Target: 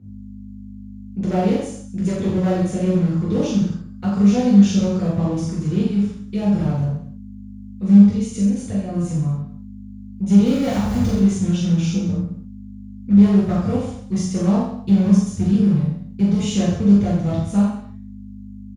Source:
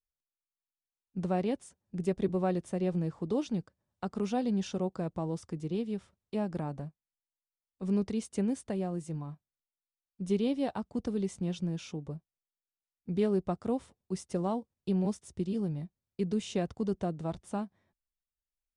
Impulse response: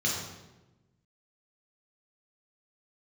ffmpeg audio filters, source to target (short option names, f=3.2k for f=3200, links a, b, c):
-filter_complex "[0:a]asettb=1/sr,asplit=3[a][b][c];[a]atrim=end=10.464[d];[b]atrim=start=10.46:end=11.15,asetpts=PTS-STARTPTS,afade=t=in:d=0.004:c=qsin,afade=t=out:st=0.686:d=0.004:c=qsin,aeval=exprs='val(0)+0.5*0.0141*sgn(val(0))':c=same[e];[c]atrim=start=11.146[f];[d][e]acrossfade=d=0.004:c1=hsin:c2=qsin[g];[g][f]acrossfade=d=0.004:c1=qsin:c2=hsin,asubboost=boost=8.5:cutoff=95,asettb=1/sr,asplit=3[h][i][j];[h]atrim=end=7.984[k];[i]atrim=start=7.98:end=8.89,asetpts=PTS-STARTPTS,afade=t=in:d=0.004:c=qsin,afade=t=out:st=0.906:d=0.004:c=qsin,acompressor=threshold=-39dB:ratio=2.5[l];[j]atrim=start=8.886[m];[k][l]acrossfade=d=0.004:c1=hsin:c2=qsin[n];[n][m]acrossfade=d=0.004:c1=qsin:c2=hsin,asplit=3[o][p][q];[o]afade=t=out:st=11.8:d=0.02[r];[p]afreqshift=27,afade=t=in:st=11.8:d=0.02,afade=t=out:st=13.15:d=0.02[s];[q]afade=t=in:st=13.15:d=0.02[t];[r][s][t]amix=inputs=3:normalize=0,aeval=exprs='val(0)+0.00282*(sin(2*PI*50*n/s)+sin(2*PI*2*50*n/s)/2+sin(2*PI*3*50*n/s)/3+sin(2*PI*4*50*n/s)/4+sin(2*PI*5*50*n/s)/5)':c=same,aeval=exprs='0.0473*(cos(1*acos(clip(val(0)/0.0473,-1,1)))-cos(1*PI/2))+0.00211*(cos(5*acos(clip(val(0)/0.0473,-1,1)))-cos(5*PI/2))':c=same,aecho=1:1:40|84|132.4|185.6|244.2:0.631|0.398|0.251|0.158|0.1[u];[1:a]atrim=start_sample=2205,atrim=end_sample=4410[v];[u][v]afir=irnorm=-1:irlink=0,volume=1.5dB"